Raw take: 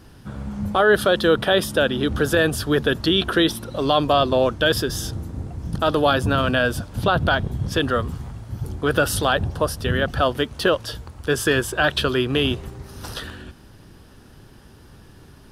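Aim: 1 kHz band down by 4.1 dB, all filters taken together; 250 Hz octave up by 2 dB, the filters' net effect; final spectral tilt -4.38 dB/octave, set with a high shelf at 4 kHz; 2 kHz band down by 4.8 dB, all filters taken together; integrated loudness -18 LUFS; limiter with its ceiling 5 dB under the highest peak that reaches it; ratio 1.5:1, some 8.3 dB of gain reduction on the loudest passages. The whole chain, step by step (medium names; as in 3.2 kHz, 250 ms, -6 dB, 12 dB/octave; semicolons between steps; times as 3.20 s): peaking EQ 250 Hz +3 dB; peaking EQ 1 kHz -5 dB; peaking EQ 2 kHz -6 dB; treble shelf 4 kHz +7 dB; compression 1.5:1, threshold -37 dBFS; trim +11.5 dB; peak limiter -6 dBFS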